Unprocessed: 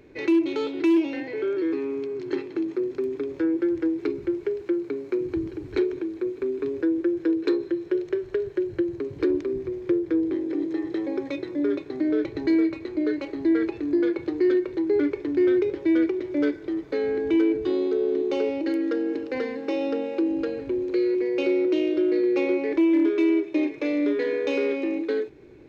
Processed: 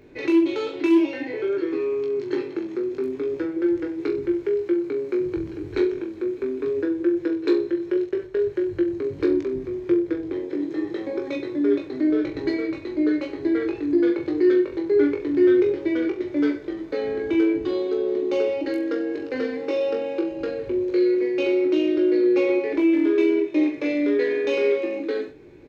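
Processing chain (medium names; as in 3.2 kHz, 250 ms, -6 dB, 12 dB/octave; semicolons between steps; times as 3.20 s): 8.05–8.48 s: gate -30 dBFS, range -8 dB; on a send: reverse bouncing-ball echo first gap 20 ms, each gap 1.1×, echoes 5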